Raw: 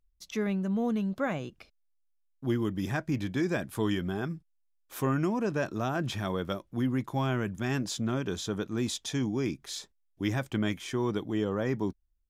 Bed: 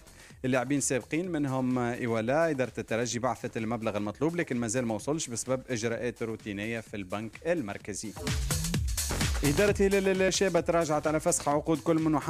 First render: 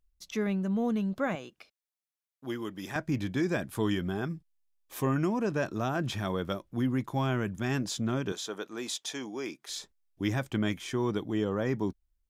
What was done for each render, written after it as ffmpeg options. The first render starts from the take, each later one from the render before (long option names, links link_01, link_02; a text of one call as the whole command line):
ffmpeg -i in.wav -filter_complex "[0:a]asettb=1/sr,asplit=3[link_01][link_02][link_03];[link_01]atrim=end=1.354[link_04];[link_02]atrim=start=1.35:end=2.96,asetpts=PTS-STARTPTS,afade=type=in:duration=0.004:curve=qsin,afade=type=out:start_time=1.606:duration=0.004:curve=qsin,highpass=frequency=560:poles=1[link_05];[link_03]atrim=start=2.956[link_06];[link_04][link_05]acrossfade=duration=0.004:curve1=hsin:curve2=qsin[link_07];[link_07][link_06]acrossfade=duration=0.004:curve1=qsin:curve2=hsin,asettb=1/sr,asplit=3[link_08][link_09][link_10];[link_08]atrim=end=4.294[link_11];[link_09]atrim=start=4.29:end=5.16,asetpts=PTS-STARTPTS,afade=type=in:duration=0.004:curve=qsin,afade=type=out:start_time=0.866:duration=0.004:curve=qsin,bandreject=frequency=1400:width=6.1[link_12];[link_10]atrim=start=5.156[link_13];[link_11][link_12]acrossfade=duration=0.004:curve1=hsin:curve2=qsin[link_14];[link_14][link_13]acrossfade=duration=0.004:curve1=qsin:curve2=hsin,asettb=1/sr,asplit=3[link_15][link_16][link_17];[link_15]atrim=end=8.324[link_18];[link_16]atrim=start=8.32:end=9.69,asetpts=PTS-STARTPTS,afade=type=in:duration=0.004:curve=qsin,afade=type=out:start_time=1.366:duration=0.004:curve=qsin,highpass=430[link_19];[link_17]atrim=start=9.686[link_20];[link_18][link_19]acrossfade=duration=0.004:curve1=hsin:curve2=qsin[link_21];[link_21][link_20]acrossfade=duration=0.004:curve1=qsin:curve2=hsin" out.wav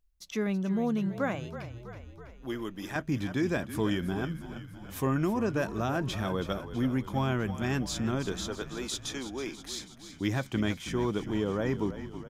ffmpeg -i in.wav -filter_complex "[0:a]asplit=9[link_01][link_02][link_03][link_04][link_05][link_06][link_07][link_08][link_09];[link_02]adelay=326,afreqshift=-37,volume=-12dB[link_10];[link_03]adelay=652,afreqshift=-74,volume=-15.9dB[link_11];[link_04]adelay=978,afreqshift=-111,volume=-19.8dB[link_12];[link_05]adelay=1304,afreqshift=-148,volume=-23.6dB[link_13];[link_06]adelay=1630,afreqshift=-185,volume=-27.5dB[link_14];[link_07]adelay=1956,afreqshift=-222,volume=-31.4dB[link_15];[link_08]adelay=2282,afreqshift=-259,volume=-35.3dB[link_16];[link_09]adelay=2608,afreqshift=-296,volume=-39.1dB[link_17];[link_01][link_10][link_11][link_12][link_13][link_14][link_15][link_16][link_17]amix=inputs=9:normalize=0" out.wav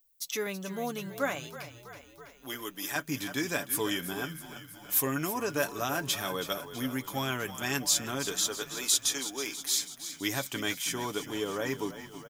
ffmpeg -i in.wav -af "aemphasis=mode=production:type=riaa,aecho=1:1:7:0.47" out.wav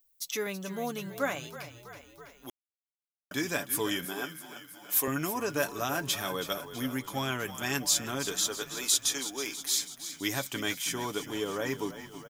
ffmpeg -i in.wav -filter_complex "[0:a]asettb=1/sr,asplit=3[link_01][link_02][link_03];[link_01]atrim=end=4.054[link_04];[link_02]atrim=start=4.05:end=5.08,asetpts=PTS-STARTPTS,afade=type=in:duration=0.004:curve=qsin,afade=type=out:start_time=1.026:duration=0.004:curve=qsin,highpass=250[link_05];[link_03]atrim=start=5.076[link_06];[link_04][link_05]acrossfade=duration=0.004:curve1=hsin:curve2=qsin[link_07];[link_07][link_06]acrossfade=duration=0.004:curve1=qsin:curve2=hsin,asettb=1/sr,asplit=3[link_08][link_09][link_10];[link_08]atrim=end=6.994[link_11];[link_09]atrim=start=6.99:end=7.39,asetpts=PTS-STARTPTS,afade=type=in:duration=0.004:curve=qsin,afade=type=out:start_time=0.396:duration=0.004:curve=qsin,equalizer=frequency=15000:width=1.9:gain=-11[link_12];[link_10]atrim=start=7.386[link_13];[link_11][link_12]acrossfade=duration=0.004:curve1=hsin:curve2=qsin[link_14];[link_14][link_13]acrossfade=duration=0.004:curve1=qsin:curve2=hsin,asplit=3[link_15][link_16][link_17];[link_15]atrim=end=2.5,asetpts=PTS-STARTPTS,afade=type=out:start_time=2.496:duration=0.004:curve=hsin[link_18];[link_16]atrim=start=2.5:end=3.31,asetpts=PTS-STARTPTS,volume=0[link_19];[link_17]atrim=start=3.31,asetpts=PTS-STARTPTS,afade=type=in:duration=0.004:curve=hsin[link_20];[link_18][link_19][link_20]concat=n=3:v=0:a=1" out.wav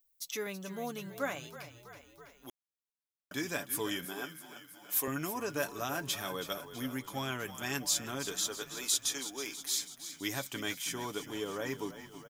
ffmpeg -i in.wav -af "volume=-4.5dB" out.wav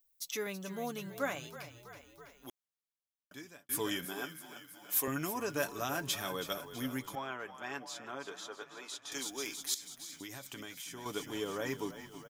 ffmpeg -i in.wav -filter_complex "[0:a]asettb=1/sr,asplit=3[link_01][link_02][link_03];[link_01]atrim=end=7.154[link_04];[link_02]atrim=start=7.15:end=9.12,asetpts=PTS-STARTPTS,afade=type=in:duration=0.004:curve=qsin,afade=type=out:start_time=1.966:duration=0.004:curve=qsin,bandpass=frequency=890:width_type=q:width=0.83[link_05];[link_03]atrim=start=9.116[link_06];[link_04][link_05]acrossfade=duration=0.004:curve1=hsin:curve2=qsin[link_07];[link_07][link_06]acrossfade=duration=0.004:curve1=qsin:curve2=hsin,asettb=1/sr,asplit=3[link_08][link_09][link_10];[link_08]atrim=end=9.744[link_11];[link_09]atrim=start=9.74:end=11.06,asetpts=PTS-STARTPTS,afade=type=in:duration=0.004:curve=qsin,afade=type=out:start_time=1.316:duration=0.004:curve=qsin,acompressor=threshold=-41dB:ratio=10:attack=3.2:release=140:knee=1:detection=peak[link_12];[link_10]atrim=start=11.056[link_13];[link_11][link_12]acrossfade=duration=0.004:curve1=hsin:curve2=qsin[link_14];[link_14][link_13]acrossfade=duration=0.004:curve1=qsin:curve2=hsin,asplit=2[link_15][link_16];[link_15]atrim=end=3.69,asetpts=PTS-STARTPTS,afade=type=out:start_time=2.47:duration=1.22[link_17];[link_16]atrim=start=3.69,asetpts=PTS-STARTPTS,afade=type=in:duration=0.004:curve=hsin[link_18];[link_17][link_18]concat=n=2:v=0:a=1" out.wav